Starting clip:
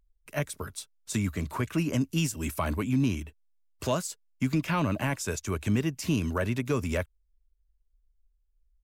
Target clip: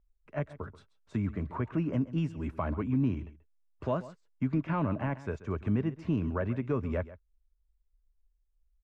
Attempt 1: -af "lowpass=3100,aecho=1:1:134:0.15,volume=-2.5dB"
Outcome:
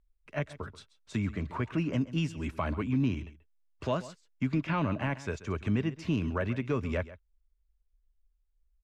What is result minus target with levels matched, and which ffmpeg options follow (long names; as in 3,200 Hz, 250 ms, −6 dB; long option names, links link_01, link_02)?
4,000 Hz band +10.5 dB
-af "lowpass=1400,aecho=1:1:134:0.15,volume=-2.5dB"